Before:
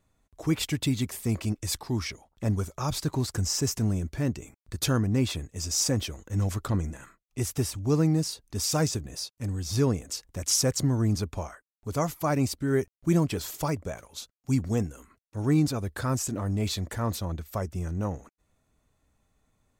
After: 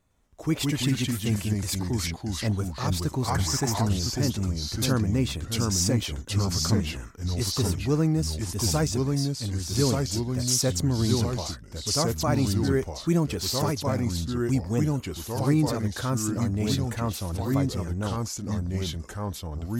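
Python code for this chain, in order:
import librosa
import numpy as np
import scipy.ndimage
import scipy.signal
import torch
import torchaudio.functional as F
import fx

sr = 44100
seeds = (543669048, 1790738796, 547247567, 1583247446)

y = fx.echo_pitch(x, sr, ms=107, semitones=-2, count=2, db_per_echo=-3.0)
y = fx.spec_box(y, sr, start_s=3.28, length_s=0.57, low_hz=600.0, high_hz=2400.0, gain_db=8)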